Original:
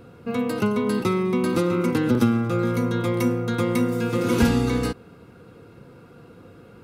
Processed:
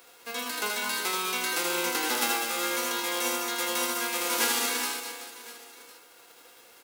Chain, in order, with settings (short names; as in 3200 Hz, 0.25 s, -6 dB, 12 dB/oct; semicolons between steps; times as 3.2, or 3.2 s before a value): spectral whitening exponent 0.3; HPF 320 Hz 24 dB/oct; crackle 39/s -35 dBFS; reverse bouncing-ball echo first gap 80 ms, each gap 1.5×, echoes 5; gain -8.5 dB